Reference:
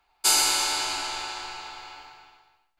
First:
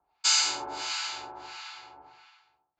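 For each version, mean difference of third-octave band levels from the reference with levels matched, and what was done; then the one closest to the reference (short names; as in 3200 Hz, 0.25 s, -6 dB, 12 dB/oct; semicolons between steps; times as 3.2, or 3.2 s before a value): 7.5 dB: HPF 79 Hz 12 dB/oct; harmonic tremolo 1.5 Hz, depth 100%, crossover 1000 Hz; downsampling 16000 Hz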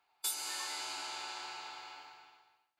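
5.0 dB: spectral noise reduction 18 dB; HPF 85 Hz 12 dB/oct; low shelf 140 Hz -10.5 dB; compressor 3:1, threshold -51 dBFS, peak gain reduction 17 dB; gain +11.5 dB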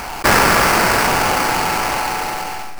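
14.0 dB: bell 5400 Hz +13 dB 0.26 oct; sample-rate reducer 3600 Hz, jitter 20%; Schroeder reverb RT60 0.41 s, combs from 33 ms, DRR 6.5 dB; fast leveller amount 70%; gain +3.5 dB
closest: second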